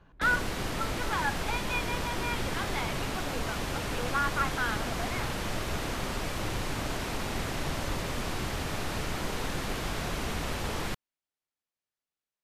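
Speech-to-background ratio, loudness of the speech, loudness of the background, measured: -0.5 dB, -34.0 LUFS, -33.5 LUFS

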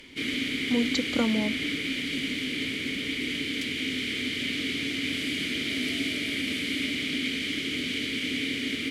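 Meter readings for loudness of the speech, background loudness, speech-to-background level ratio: -29.0 LUFS, -28.5 LUFS, -0.5 dB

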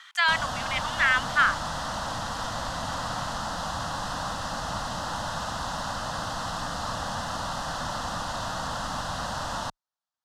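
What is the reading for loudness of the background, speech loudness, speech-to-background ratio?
-31.5 LUFS, -24.5 LUFS, 7.0 dB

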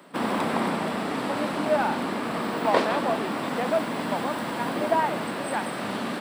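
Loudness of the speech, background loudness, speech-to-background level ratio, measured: -30.0 LUFS, -28.5 LUFS, -1.5 dB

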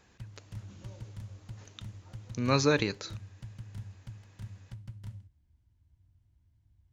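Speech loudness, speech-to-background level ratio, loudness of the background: -29.5 LUFS, 17.5 dB, -47.0 LUFS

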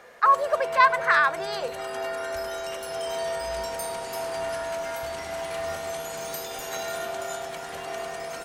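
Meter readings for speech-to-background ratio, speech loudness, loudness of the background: 10.0 dB, -22.0 LUFS, -32.0 LUFS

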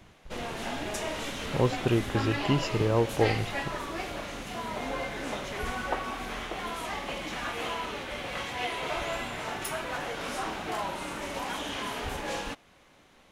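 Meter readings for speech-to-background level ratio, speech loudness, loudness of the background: 5.5 dB, -28.5 LUFS, -34.0 LUFS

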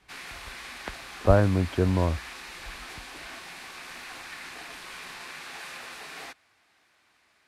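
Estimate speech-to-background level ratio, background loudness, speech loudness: 15.5 dB, -40.0 LUFS, -24.5 LUFS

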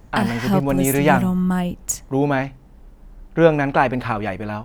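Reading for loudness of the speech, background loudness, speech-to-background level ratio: -20.5 LUFS, -22.5 LUFS, 2.0 dB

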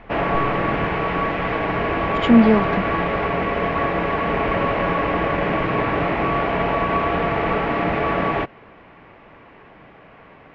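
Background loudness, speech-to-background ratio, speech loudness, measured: -21.0 LUFS, 3.5 dB, -17.5 LUFS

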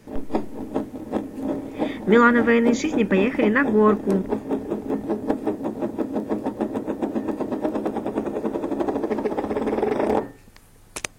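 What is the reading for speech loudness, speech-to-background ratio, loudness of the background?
-19.5 LUFS, 7.5 dB, -27.0 LUFS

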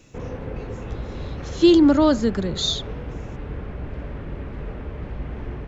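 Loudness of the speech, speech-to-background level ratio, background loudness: -18.5 LUFS, 15.5 dB, -34.0 LUFS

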